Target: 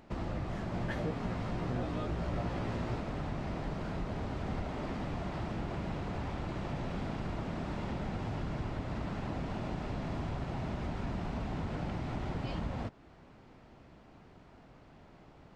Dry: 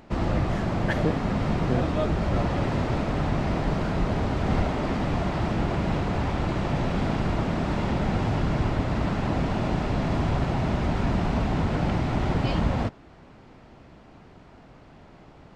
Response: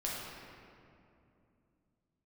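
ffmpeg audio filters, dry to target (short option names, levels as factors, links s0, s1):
-filter_complex "[0:a]acompressor=threshold=0.0316:ratio=2,asettb=1/sr,asplit=3[s0][s1][s2];[s0]atrim=end=0.724[s3];[s1]atrim=start=0.72:end=3,asetpts=PTS-STARTPTS,afade=t=in:d=0.004:c=qsin,afade=t=out:st=2.276:d=0.004:c=qsin,asplit=2[s4][s5];[s5]adelay=17,volume=0.708[s6];[s4][s6]amix=inputs=2:normalize=0,atrim=end_sample=100548[s7];[s2]atrim=start=2.996[s8];[s3][s7]acrossfade=d=0.004:c1=hsin:c2=qsin[s9];[s9][s8]acrossfade=d=0.004:c1=qsin:c2=hsin,volume=0.447"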